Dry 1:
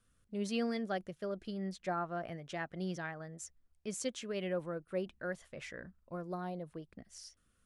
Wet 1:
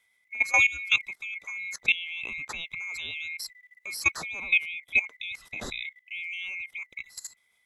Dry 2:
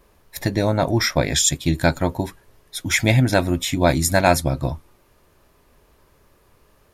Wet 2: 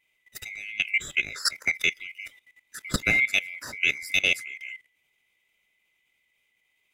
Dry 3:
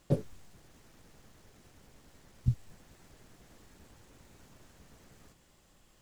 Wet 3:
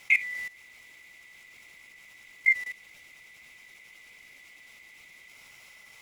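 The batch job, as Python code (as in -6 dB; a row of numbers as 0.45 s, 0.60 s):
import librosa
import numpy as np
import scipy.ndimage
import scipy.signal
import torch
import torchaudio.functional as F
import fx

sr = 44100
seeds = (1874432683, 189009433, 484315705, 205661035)

y = fx.band_swap(x, sr, width_hz=2000)
y = fx.level_steps(y, sr, step_db=17)
y = librosa.util.normalize(y) * 10.0 ** (-9 / 20.0)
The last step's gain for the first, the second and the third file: +15.0 dB, -4.0 dB, +15.5 dB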